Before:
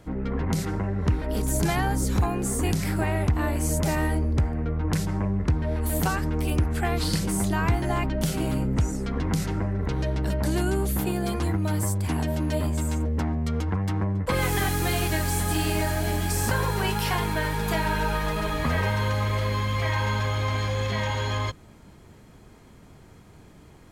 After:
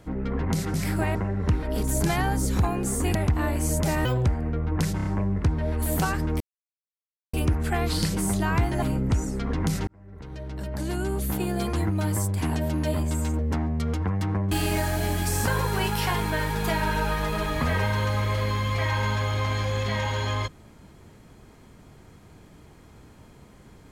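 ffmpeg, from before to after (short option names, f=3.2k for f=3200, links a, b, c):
-filter_complex "[0:a]asplit=13[a][b][c][d][e][f][g][h][i][j][k][l][m];[a]atrim=end=0.742[n];[b]atrim=start=2.738:end=3.152[o];[c]atrim=start=0.738:end=2.742[p];[d]atrim=start=3.148:end=4.054[q];[e]atrim=start=4.05:end=4.38,asetpts=PTS-STARTPTS,asetrate=71442,aresample=44100,atrim=end_sample=8983,asetpts=PTS-STARTPTS[r];[f]atrim=start=4.376:end=5.122[s];[g]atrim=start=5.088:end=5.122[t];[h]atrim=start=5.088:end=5.122[u];[i]atrim=start=5.088:end=6.44,asetpts=PTS-STARTPTS,afade=t=out:st=1.348:d=0.004:c=hsin,apad=pad_dur=0.93[v];[j]atrim=start=6.44:end=7.932,asetpts=PTS-STARTPTS,afade=t=in:d=0.004:c=hsin[w];[k]atrim=start=8.488:end=9.54,asetpts=PTS-STARTPTS,afade=t=out:st=1.048:d=0.004:c=hsin[x];[l]atrim=start=9.54:end=14.182,asetpts=PTS-STARTPTS,afade=t=in:d=1.72[y];[m]atrim=start=15.548[z];[n][o]acrossfade=d=0.004:c1=hsin:c2=hsin[aa];[aa][p]acrossfade=d=0.004:c1=hsin:c2=hsin[ab];[ab][q]acrossfade=d=0.004:c1=hsin:c2=hsin[ac];[ac][r]acrossfade=d=0.004:c1=hsin:c2=hsin[ad];[ad][s]acrossfade=d=0.004:c1=hsin:c2=hsin[ae];[ae][t]acrossfade=d=0.004:c1=hsin:c2=hsin[af];[af][u]acrossfade=d=0.004:c1=hsin:c2=hsin[ag];[v][w]concat=n=2:v=0:a=1[ah];[ag][ah]acrossfade=d=0.004:c1=hsin:c2=hsin[ai];[x][y]concat=n=2:v=0:a=1[aj];[ai][aj]acrossfade=d=0.004:c1=hsin:c2=hsin[ak];[ak][z]acrossfade=d=0.004:c1=hsin:c2=hsin"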